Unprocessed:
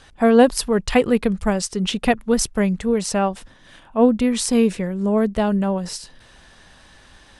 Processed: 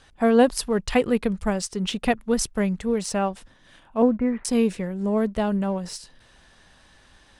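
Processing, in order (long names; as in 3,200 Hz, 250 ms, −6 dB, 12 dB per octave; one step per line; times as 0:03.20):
0:04.02–0:04.45: Butterworth low-pass 2,100 Hz 48 dB per octave
in parallel at −11.5 dB: dead-zone distortion −33.5 dBFS
on the sum: level −6 dB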